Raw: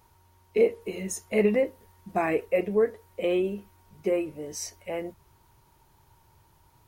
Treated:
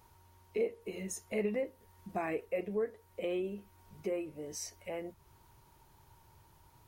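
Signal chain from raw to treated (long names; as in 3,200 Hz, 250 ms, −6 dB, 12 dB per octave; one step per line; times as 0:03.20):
downward compressor 1.5 to 1, threshold −46 dBFS, peak gain reduction 10.5 dB
level −1.5 dB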